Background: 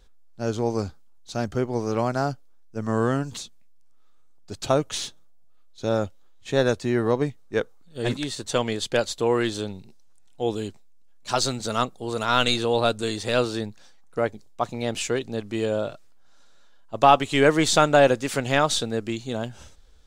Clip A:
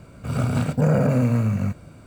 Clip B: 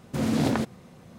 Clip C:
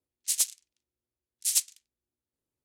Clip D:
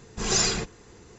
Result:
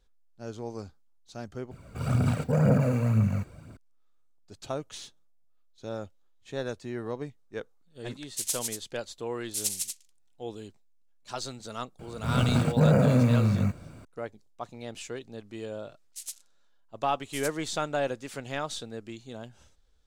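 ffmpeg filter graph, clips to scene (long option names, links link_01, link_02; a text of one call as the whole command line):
ffmpeg -i bed.wav -i cue0.wav -i cue1.wav -i cue2.wav -filter_complex "[1:a]asplit=2[link_01][link_02];[3:a]asplit=2[link_03][link_04];[0:a]volume=-12.5dB[link_05];[link_01]aphaser=in_gain=1:out_gain=1:delay=2.7:decay=0.45:speed=2:type=triangular[link_06];[link_03]aecho=1:1:151.6|236.2:0.631|0.398[link_07];[link_05]asplit=2[link_08][link_09];[link_08]atrim=end=1.714[link_10];[link_06]atrim=end=2.06,asetpts=PTS-STARTPTS,volume=-5.5dB[link_11];[link_09]atrim=start=3.766[link_12];[link_07]atrim=end=2.64,asetpts=PTS-STARTPTS,volume=-5dB,afade=type=in:duration=0.004:curve=hsin,afade=type=out:start_time=2.636:duration=0.004:curve=hsin,adelay=8090[link_13];[link_02]atrim=end=2.06,asetpts=PTS-STARTPTS,volume=-2dB,afade=type=in:duration=0.004:curve=hsin,afade=type=out:start_time=2.056:duration=0.004:curve=hsin,adelay=11990[link_14];[link_04]atrim=end=2.64,asetpts=PTS-STARTPTS,volume=-13.5dB,afade=type=in:duration=0.004:curve=hsin,afade=type=out:start_time=2.636:duration=0.004:curve=hsin,adelay=700308S[link_15];[link_10][link_11]acrossfade=duration=0.004:curve1=hsin:curve2=hsin[link_16];[link_16][link_12]acrossfade=duration=0.004:curve1=hsin:curve2=hsin[link_17];[link_17][link_13][link_14][link_15]amix=inputs=4:normalize=0" out.wav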